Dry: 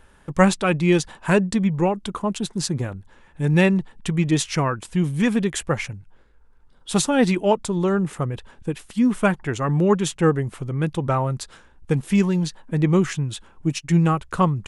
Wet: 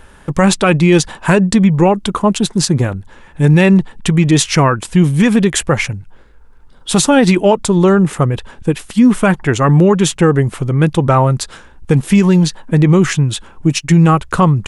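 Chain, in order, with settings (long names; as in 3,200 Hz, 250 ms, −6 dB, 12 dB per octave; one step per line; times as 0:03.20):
boost into a limiter +12.5 dB
level −1 dB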